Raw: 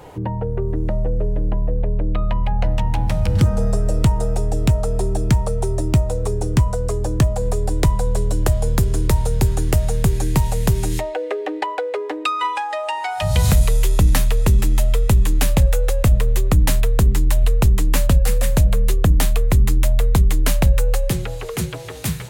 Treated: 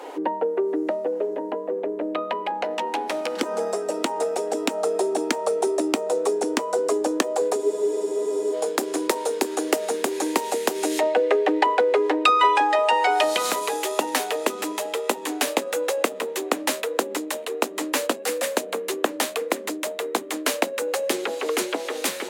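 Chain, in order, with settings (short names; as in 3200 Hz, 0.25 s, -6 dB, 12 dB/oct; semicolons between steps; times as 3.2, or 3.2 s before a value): compressor, threshold -15 dBFS, peak gain reduction 6 dB; steep high-pass 270 Hz 48 dB/oct; high shelf 11000 Hz -9 dB; on a send: darkening echo 1.122 s, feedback 50%, low-pass 1000 Hz, level -9 dB; on the sum: spectral freeze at 7.59, 0.95 s; gain +4.5 dB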